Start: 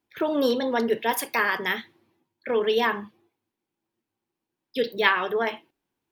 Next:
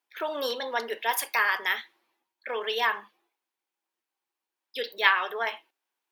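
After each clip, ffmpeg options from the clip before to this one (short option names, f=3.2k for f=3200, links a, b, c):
-af "highpass=760"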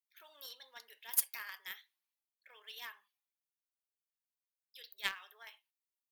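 -af "aderivative,acrusher=bits=7:mode=log:mix=0:aa=0.000001,aeval=exprs='0.237*(cos(1*acos(clip(val(0)/0.237,-1,1)))-cos(1*PI/2))+0.0119*(cos(3*acos(clip(val(0)/0.237,-1,1)))-cos(3*PI/2))+0.0188*(cos(7*acos(clip(val(0)/0.237,-1,1)))-cos(7*PI/2))':c=same,volume=-1dB"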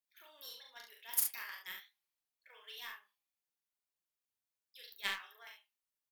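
-af "flanger=delay=4.8:depth=7.2:regen=48:speed=0.53:shape=sinusoidal,aecho=1:1:39|69:0.668|0.447,volume=2dB"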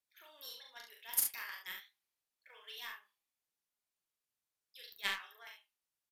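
-af "aresample=32000,aresample=44100,volume=1dB"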